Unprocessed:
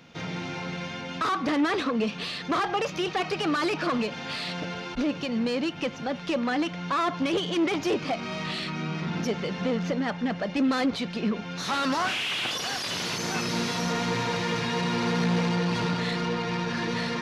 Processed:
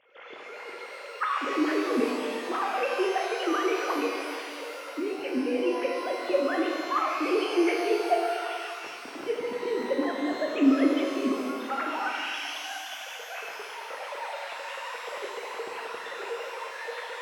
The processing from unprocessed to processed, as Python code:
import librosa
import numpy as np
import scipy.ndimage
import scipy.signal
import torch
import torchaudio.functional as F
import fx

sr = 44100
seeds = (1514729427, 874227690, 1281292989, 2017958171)

y = fx.sine_speech(x, sr)
y = fx.highpass(y, sr, hz=190.0, slope=6)
y = fx.low_shelf(y, sr, hz=460.0, db=6.0)
y = fx.rev_shimmer(y, sr, seeds[0], rt60_s=2.1, semitones=12, shimmer_db=-8, drr_db=-0.5)
y = y * 10.0 ** (-6.5 / 20.0)